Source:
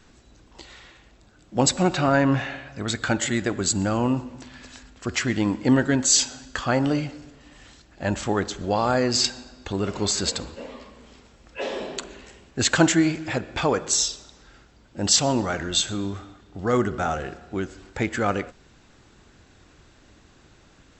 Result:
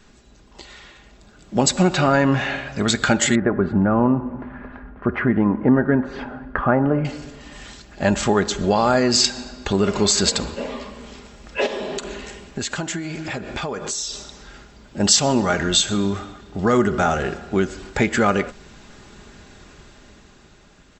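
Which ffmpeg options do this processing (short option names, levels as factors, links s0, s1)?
-filter_complex "[0:a]asettb=1/sr,asplit=3[s0][s1][s2];[s0]atrim=end=3.354[s3];[s1]atrim=start=3.35:end=7.05,asetpts=PTS-STARTPTS,afade=t=in:d=0.004:c=qsin,afade=t=out:st=3.696:d=0.004:c=qsin,lowpass=f=1600:w=0.5412,lowpass=f=1600:w=1.3066[s4];[s2]atrim=start=7.046[s5];[s3][s4]acrossfade=d=0.004:c1=hsin:c2=qsin[s6];[s6][s5]acrossfade=d=0.004:c1=qsin:c2=hsin,asettb=1/sr,asplit=3[s7][s8][s9];[s7]atrim=end=11.664[s10];[s8]atrim=start=11.66:end=15,asetpts=PTS-STARTPTS,afade=t=in:d=0.004:c=qsin,afade=t=out:st=3.336:d=0.004:c=qsin,acompressor=threshold=0.02:ratio=6:attack=3.2:release=140:knee=1:detection=peak[s11];[s9]atrim=start=14.996[s12];[s10][s11]acrossfade=d=0.004:c1=hsin:c2=qsin[s13];[s13][s12]acrossfade=d=0.004:c1=qsin:c2=hsin,acompressor=threshold=0.0501:ratio=2,aecho=1:1:4.9:0.36,dynaudnorm=f=240:g=11:m=2.37,volume=1.26"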